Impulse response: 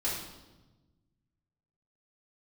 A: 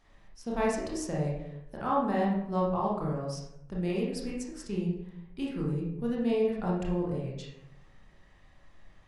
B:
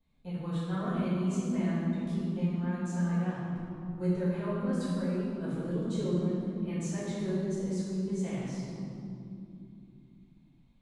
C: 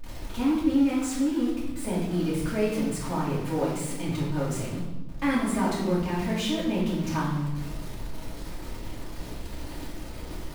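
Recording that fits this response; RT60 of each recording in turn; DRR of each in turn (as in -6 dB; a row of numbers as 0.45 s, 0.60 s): C; 0.80 s, 2.8 s, 1.1 s; -4.5 dB, -11.5 dB, -8.5 dB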